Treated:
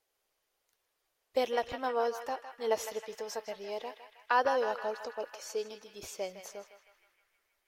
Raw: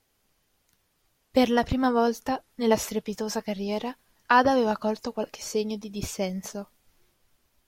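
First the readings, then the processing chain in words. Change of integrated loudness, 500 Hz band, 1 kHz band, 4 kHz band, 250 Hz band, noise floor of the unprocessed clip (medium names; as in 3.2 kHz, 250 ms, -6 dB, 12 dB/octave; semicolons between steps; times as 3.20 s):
-8.0 dB, -6.5 dB, -7.0 dB, -8.0 dB, -21.0 dB, -72 dBFS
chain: resonant low shelf 310 Hz -12.5 dB, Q 1.5; on a send: band-passed feedback delay 158 ms, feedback 70%, band-pass 1.9 kHz, level -7 dB; on the sum: trim -9 dB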